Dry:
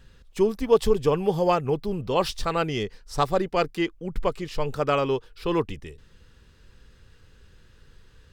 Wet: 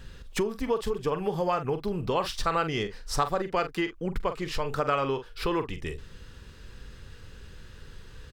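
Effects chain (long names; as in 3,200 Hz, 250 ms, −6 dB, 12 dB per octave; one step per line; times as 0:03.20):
double-tracking delay 44 ms −11 dB
downward compressor 6 to 1, threshold −34 dBFS, peak gain reduction 19.5 dB
dynamic equaliser 1,400 Hz, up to +7 dB, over −54 dBFS, Q 0.98
level +7 dB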